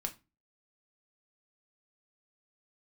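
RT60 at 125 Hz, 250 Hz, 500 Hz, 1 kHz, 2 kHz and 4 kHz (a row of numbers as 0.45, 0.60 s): 0.40, 0.40, 0.30, 0.25, 0.25, 0.20 s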